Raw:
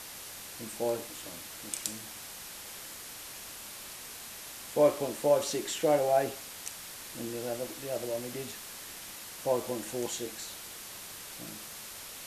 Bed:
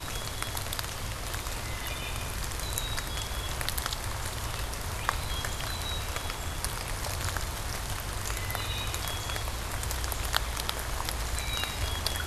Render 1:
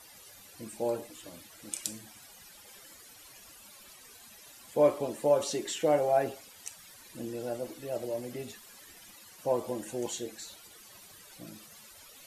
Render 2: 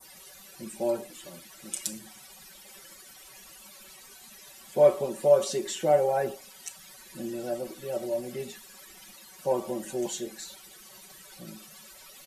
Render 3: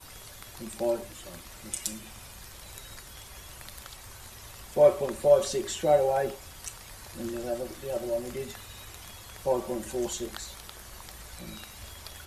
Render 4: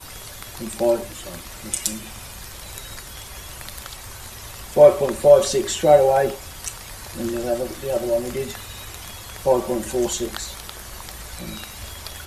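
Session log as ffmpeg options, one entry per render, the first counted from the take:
-af "afftdn=nr=14:nf=-45"
-af "adynamicequalizer=threshold=0.00501:dfrequency=2700:dqfactor=0.71:tfrequency=2700:tqfactor=0.71:attack=5:release=100:ratio=0.375:range=2:mode=cutabove:tftype=bell,aecho=1:1:5.3:0.95"
-filter_complex "[1:a]volume=0.188[s0];[0:a][s0]amix=inputs=2:normalize=0"
-af "volume=2.82,alimiter=limit=0.794:level=0:latency=1"

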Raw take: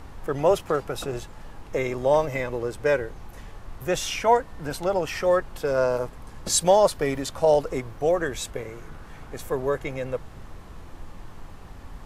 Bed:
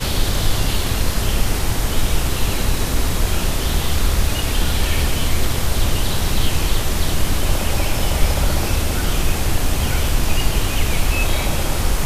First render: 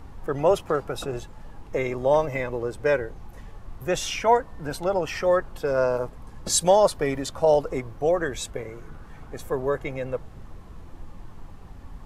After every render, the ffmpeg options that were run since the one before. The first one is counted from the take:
-af "afftdn=nr=6:nf=-44"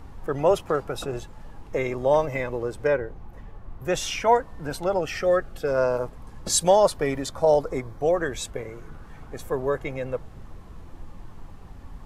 -filter_complex "[0:a]asettb=1/sr,asplit=3[s0][s1][s2];[s0]atrim=end=2.874[s3];[s1]atrim=start=2.87:end=3.85,asetpts=PTS-STARTPTS,afade=t=in:d=0.004:c=qsin,afade=t=out:st=0.976:d=0.004:c=qsin,equalizer=f=8700:t=o:w=2.6:g=-11.5[s4];[s2]atrim=start=3.846[s5];[s3][s4]acrossfade=d=0.004:c1=hsin:c2=qsin[s6];[s6][s5]acrossfade=d=0.004:c1=qsin:c2=hsin,asettb=1/sr,asplit=3[s7][s8][s9];[s7]atrim=end=5.004[s10];[s8]atrim=start=5:end=5.68,asetpts=PTS-STARTPTS,afade=t=in:d=0.004:c=qsin,afade=t=out:st=0.676:d=0.004:c=qsin,asuperstop=centerf=970:order=4:qfactor=3.4[s11];[s9]atrim=start=5.676[s12];[s10][s11]acrossfade=d=0.004:c1=hsin:c2=qsin[s13];[s13][s12]acrossfade=d=0.004:c1=qsin:c2=hsin,asettb=1/sr,asplit=3[s14][s15][s16];[s14]atrim=end=7.264[s17];[s15]atrim=start=7.26:end=8.01,asetpts=PTS-STARTPTS,afade=t=in:d=0.004:c=qsin,afade=t=out:st=0.746:d=0.004:c=qsin,bandreject=f=2800:w=5.2[s18];[s16]atrim=start=8.006[s19];[s17][s18]acrossfade=d=0.004:c1=hsin:c2=qsin[s20];[s20][s19]acrossfade=d=0.004:c1=qsin:c2=hsin"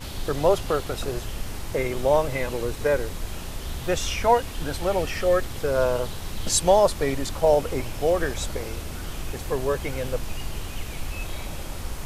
-filter_complex "[1:a]volume=0.188[s0];[0:a][s0]amix=inputs=2:normalize=0"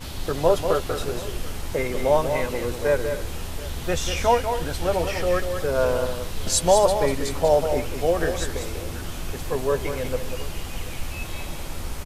-filter_complex "[0:a]asplit=2[s0][s1];[s1]adelay=12,volume=0.299[s2];[s0][s2]amix=inputs=2:normalize=0,asplit=2[s3][s4];[s4]aecho=0:1:193|258|730:0.422|0.141|0.106[s5];[s3][s5]amix=inputs=2:normalize=0"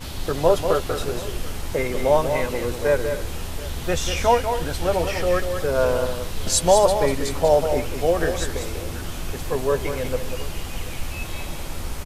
-af "volume=1.19"

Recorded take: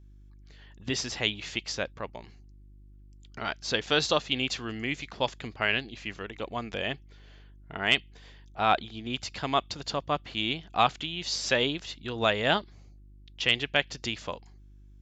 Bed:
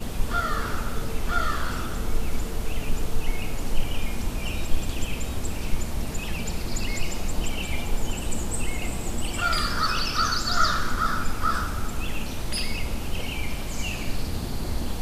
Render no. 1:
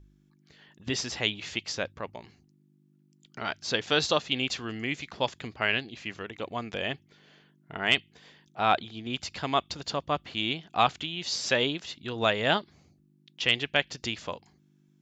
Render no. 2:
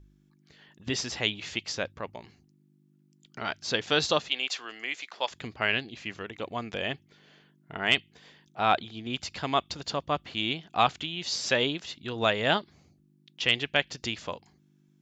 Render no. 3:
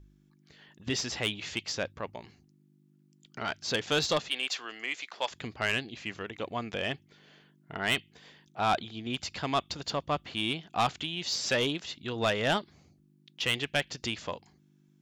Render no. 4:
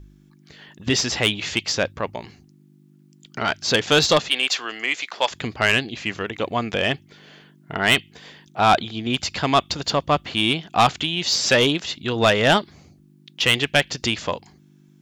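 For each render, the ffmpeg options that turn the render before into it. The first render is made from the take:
-af "bandreject=f=50:t=h:w=4,bandreject=f=100:t=h:w=4"
-filter_complex "[0:a]asettb=1/sr,asplit=3[s0][s1][s2];[s0]atrim=end=4.294[s3];[s1]atrim=start=4.29:end=5.31,asetpts=PTS-STARTPTS,afade=t=in:d=0.004:c=qsin,afade=t=out:st=1.016:d=0.004:c=qsin,highpass=630[s4];[s2]atrim=start=5.306[s5];[s3][s4]acrossfade=d=0.004:c1=hsin:c2=qsin[s6];[s6][s5]acrossfade=d=0.004:c1=qsin:c2=hsin"
-af "asoftclip=type=tanh:threshold=0.112"
-af "volume=3.55"

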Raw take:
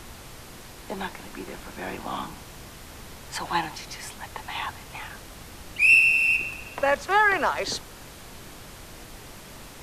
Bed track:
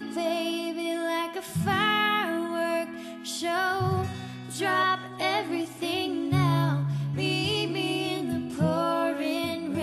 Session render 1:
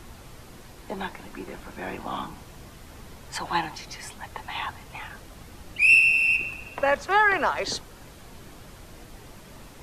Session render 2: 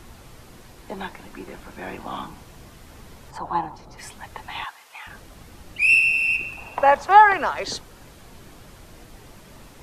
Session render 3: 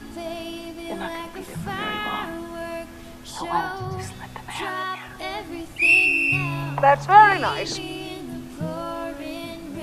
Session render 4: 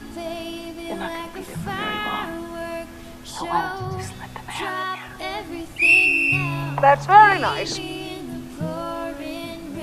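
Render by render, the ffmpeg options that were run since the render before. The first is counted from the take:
-af "afftdn=nr=6:nf=-44"
-filter_complex "[0:a]asplit=3[s0][s1][s2];[s0]afade=t=out:st=3.3:d=0.02[s3];[s1]highshelf=f=1500:t=q:w=1.5:g=-12.5,afade=t=in:st=3.3:d=0.02,afade=t=out:st=3.97:d=0.02[s4];[s2]afade=t=in:st=3.97:d=0.02[s5];[s3][s4][s5]amix=inputs=3:normalize=0,asettb=1/sr,asplit=3[s6][s7][s8];[s6]atrim=end=4.644[s9];[s7]atrim=start=4.64:end=5.07,asetpts=PTS-STARTPTS,afade=t=in:d=0.004:c=qsin,afade=t=out:st=0.426:d=0.004:c=qsin,highpass=870[s10];[s8]atrim=start=5.066[s11];[s9][s10]acrossfade=d=0.004:c1=hsin:c2=qsin[s12];[s12][s11]acrossfade=d=0.004:c1=qsin:c2=hsin,asettb=1/sr,asplit=3[s13][s14][s15];[s13]atrim=end=6.574[s16];[s14]atrim=start=6.57:end=7.33,asetpts=PTS-STARTPTS,afade=t=in:d=0.004:c=qsin,afade=t=out:st=0.756:d=0.004:c=qsin,equalizer=f=860:w=1.8:g=12[s17];[s15]atrim=start=7.326[s18];[s16][s17]acrossfade=d=0.004:c1=hsin:c2=qsin[s19];[s19][s18]acrossfade=d=0.004:c1=qsin:c2=hsin"
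-filter_complex "[1:a]volume=0.596[s0];[0:a][s0]amix=inputs=2:normalize=0"
-af "volume=1.19,alimiter=limit=0.794:level=0:latency=1"

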